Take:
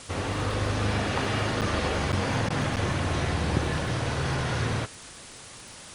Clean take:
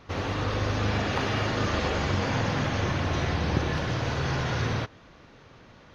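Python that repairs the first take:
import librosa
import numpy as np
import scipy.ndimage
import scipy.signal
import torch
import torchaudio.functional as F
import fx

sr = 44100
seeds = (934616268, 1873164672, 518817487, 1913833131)

y = fx.fix_declick_ar(x, sr, threshold=6.5)
y = fx.fix_interpolate(y, sr, at_s=(1.61, 2.12, 2.76), length_ms=8.0)
y = fx.fix_interpolate(y, sr, at_s=(2.49,), length_ms=11.0)
y = fx.noise_reduce(y, sr, print_start_s=5.09, print_end_s=5.59, reduce_db=7.0)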